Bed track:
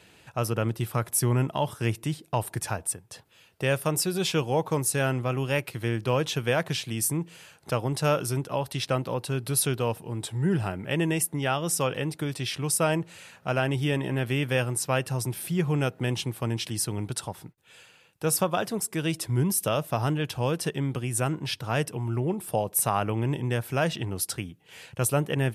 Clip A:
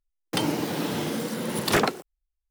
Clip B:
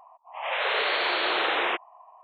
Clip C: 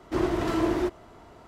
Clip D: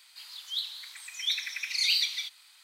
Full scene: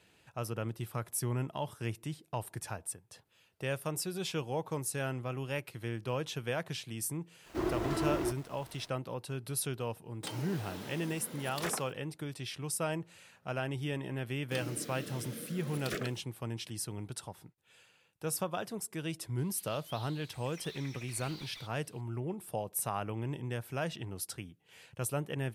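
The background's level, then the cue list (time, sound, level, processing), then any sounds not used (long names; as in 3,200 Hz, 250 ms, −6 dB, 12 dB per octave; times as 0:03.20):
bed track −10 dB
0:07.43: mix in C −7.5 dB, fades 0.05 s + bit-depth reduction 8 bits, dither none
0:09.90: mix in A −14.5 dB + low-shelf EQ 370 Hz −7.5 dB
0:14.18: mix in A −15.5 dB + Butterworth band-reject 890 Hz, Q 1.5
0:19.38: mix in D −12 dB + slew-rate limiting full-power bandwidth 53 Hz
not used: B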